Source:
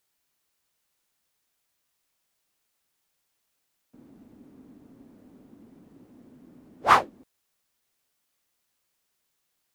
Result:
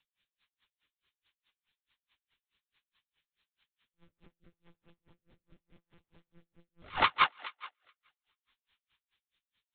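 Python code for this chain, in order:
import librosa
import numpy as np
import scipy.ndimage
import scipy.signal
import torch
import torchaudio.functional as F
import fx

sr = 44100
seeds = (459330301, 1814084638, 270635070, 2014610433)

p1 = fx.tracing_dist(x, sr, depth_ms=0.17)
p2 = scipy.signal.sosfilt(scipy.signal.cheby1(3, 1.0, [260.0, 550.0], 'bandstop', fs=sr, output='sos'), p1)
p3 = fx.tilt_eq(p2, sr, slope=4.0)
p4 = fx.lpc_monotone(p3, sr, seeds[0], pitch_hz=170.0, order=10)
p5 = fx.peak_eq(p4, sr, hz=680.0, db=-6.5, octaves=0.22)
p6 = p5 + fx.echo_thinned(p5, sr, ms=141, feedback_pct=49, hz=260.0, wet_db=-4.5, dry=0)
p7 = fx.rotary_switch(p6, sr, hz=6.0, then_hz=0.75, switch_at_s=3.73)
p8 = p7 * 10.0 ** (-37 * (0.5 - 0.5 * np.cos(2.0 * np.pi * 4.7 * np.arange(len(p7)) / sr)) / 20.0)
y = p8 * 10.0 ** (6.5 / 20.0)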